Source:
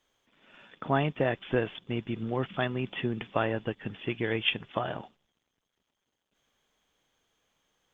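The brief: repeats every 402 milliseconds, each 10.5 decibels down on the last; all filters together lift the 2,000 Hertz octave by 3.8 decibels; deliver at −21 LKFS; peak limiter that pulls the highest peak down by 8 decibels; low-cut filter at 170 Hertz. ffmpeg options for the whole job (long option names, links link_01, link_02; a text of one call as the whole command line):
ffmpeg -i in.wav -af "highpass=170,equalizer=frequency=2000:width_type=o:gain=5,alimiter=limit=-17.5dB:level=0:latency=1,aecho=1:1:402|804|1206:0.299|0.0896|0.0269,volume=11.5dB" out.wav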